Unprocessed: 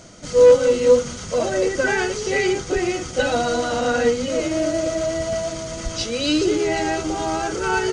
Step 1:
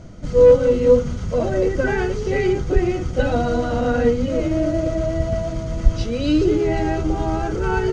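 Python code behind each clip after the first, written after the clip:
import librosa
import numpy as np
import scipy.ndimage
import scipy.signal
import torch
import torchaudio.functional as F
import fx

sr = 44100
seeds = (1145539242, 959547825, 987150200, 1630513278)

y = fx.riaa(x, sr, side='playback')
y = y * 10.0 ** (-2.5 / 20.0)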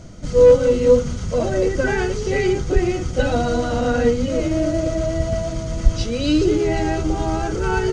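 y = fx.high_shelf(x, sr, hz=4300.0, db=10.0)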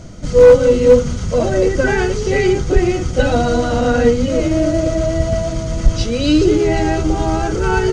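y = np.clip(10.0 ** (6.0 / 20.0) * x, -1.0, 1.0) / 10.0 ** (6.0 / 20.0)
y = y * 10.0 ** (4.5 / 20.0)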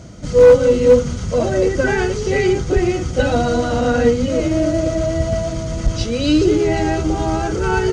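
y = scipy.signal.sosfilt(scipy.signal.butter(2, 44.0, 'highpass', fs=sr, output='sos'), x)
y = y * 10.0 ** (-1.5 / 20.0)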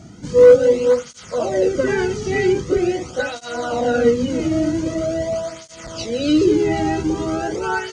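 y = fx.flanger_cancel(x, sr, hz=0.44, depth_ms=2.0)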